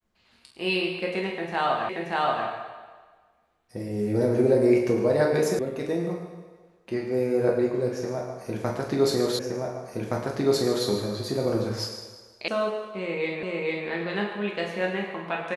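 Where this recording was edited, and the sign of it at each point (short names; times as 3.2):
1.89 repeat of the last 0.58 s
5.59 sound cut off
9.39 repeat of the last 1.47 s
12.48 sound cut off
13.43 repeat of the last 0.45 s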